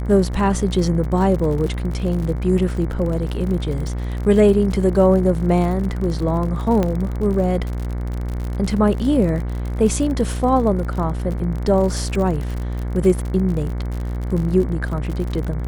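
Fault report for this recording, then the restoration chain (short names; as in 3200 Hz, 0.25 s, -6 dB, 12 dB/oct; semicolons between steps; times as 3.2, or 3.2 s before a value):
buzz 60 Hz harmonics 38 -24 dBFS
crackle 54/s -26 dBFS
6.83 pop -9 dBFS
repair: de-click; de-hum 60 Hz, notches 38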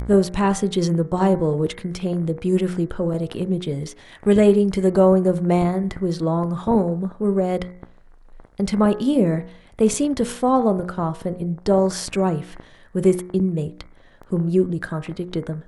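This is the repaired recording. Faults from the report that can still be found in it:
none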